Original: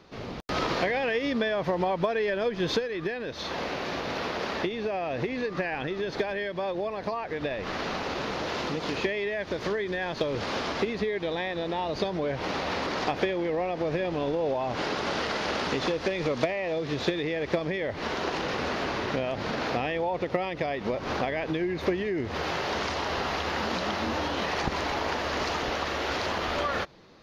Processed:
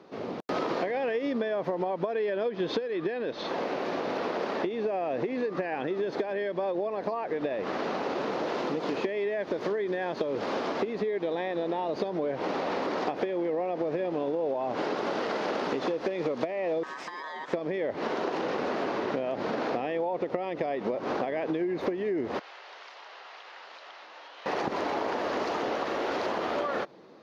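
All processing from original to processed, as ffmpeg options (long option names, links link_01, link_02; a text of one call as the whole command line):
ffmpeg -i in.wav -filter_complex "[0:a]asettb=1/sr,asplit=3[link_01][link_02][link_03];[link_01]atrim=end=2.144[link_04];[link_02]atrim=start=2.14:end=3.48,asetpts=PTS-STARTPTS,afade=type=in:duration=0.004:curve=qsin,afade=type=out:start_time=1.336:duration=0.004:curve=qsin,lowpass=5700,equalizer=frequency=3500:width=1.4:gain=3.5[link_05];[link_03]atrim=start=3.476[link_06];[link_04][link_05]acrossfade=duration=0.004:curve1=hsin:curve2=qsin[link_07];[link_07][link_06]acrossfade=duration=0.004:curve1=qsin:curve2=hsin,asettb=1/sr,asplit=3[link_08][link_09][link_10];[link_08]atrim=end=16.834[link_11];[link_09]atrim=start=16.83:end=17.53,asetpts=PTS-STARTPTS,afade=type=in:duration=0.004:curve=qsin,afade=type=out:start_time=0.696:duration=0.004:curve=qsin,highshelf=frequency=5100:gain=7,acompressor=threshold=-31dB:ratio=10:attack=3.2:release=140:knee=1:detection=peak,aeval=exprs='val(0)*sin(2*PI*1400*n/s)':channel_layout=same[link_12];[link_10]atrim=start=17.526[link_13];[link_11][link_12]acrossfade=duration=0.004:curve1=hsin:curve2=qsin[link_14];[link_14][link_13]acrossfade=duration=0.004:curve1=qsin:curve2=hsin,asettb=1/sr,asplit=3[link_15][link_16][link_17];[link_15]atrim=end=22.394[link_18];[link_16]atrim=start=22.39:end=24.46,asetpts=PTS-STARTPTS,afade=type=in:duration=0.004:curve=qsin,afade=type=out:start_time=2.066:duration=0.004:curve=qsin,highpass=500,lowpass=3200,aderivative[link_19];[link_17]atrim=start=24.456[link_20];[link_18][link_19]acrossfade=duration=0.004:curve1=hsin:curve2=qsin[link_21];[link_21][link_20]acrossfade=duration=0.004:curve1=qsin:curve2=hsin,highpass=280,tiltshelf=frequency=1200:gain=7,acompressor=threshold=-26dB:ratio=6" out.wav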